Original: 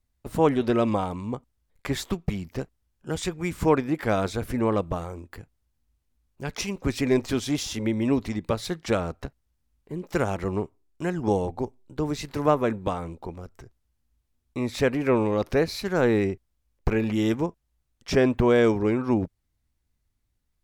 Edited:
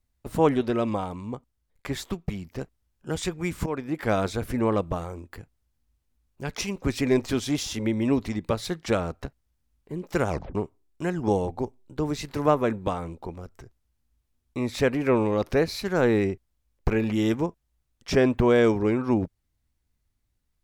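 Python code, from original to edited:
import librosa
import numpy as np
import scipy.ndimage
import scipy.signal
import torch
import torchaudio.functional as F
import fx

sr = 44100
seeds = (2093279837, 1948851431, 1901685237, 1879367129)

y = fx.edit(x, sr, fx.clip_gain(start_s=0.61, length_s=2.0, db=-3.0),
    fx.fade_in_from(start_s=3.66, length_s=0.43, floor_db=-14.5),
    fx.tape_stop(start_s=10.29, length_s=0.26), tone=tone)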